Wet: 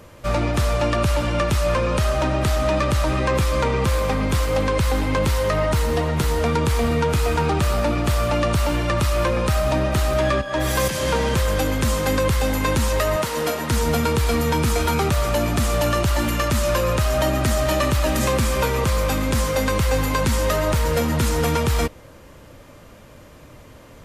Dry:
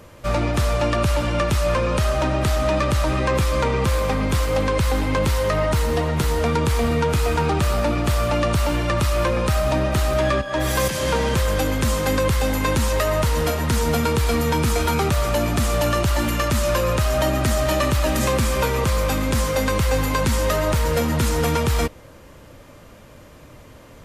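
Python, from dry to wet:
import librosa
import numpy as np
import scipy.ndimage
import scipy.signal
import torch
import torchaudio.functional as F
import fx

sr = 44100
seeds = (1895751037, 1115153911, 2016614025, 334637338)

y = fx.highpass(x, sr, hz=200.0, slope=12, at=(13.16, 13.71))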